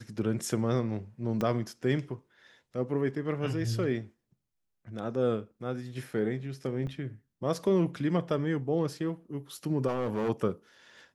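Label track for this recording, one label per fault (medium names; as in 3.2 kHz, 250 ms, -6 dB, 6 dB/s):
1.410000	1.410000	pop -18 dBFS
6.870000	6.870000	dropout 2.4 ms
9.870000	10.300000	clipped -26.5 dBFS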